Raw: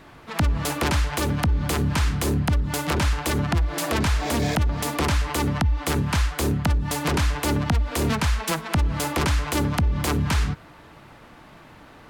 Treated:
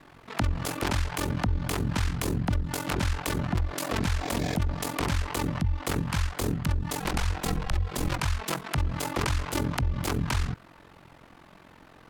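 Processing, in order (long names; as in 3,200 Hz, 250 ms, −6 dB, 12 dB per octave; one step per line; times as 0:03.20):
0:07.00–0:08.19: frequency shifter −120 Hz
ring modulation 22 Hz
level −2.5 dB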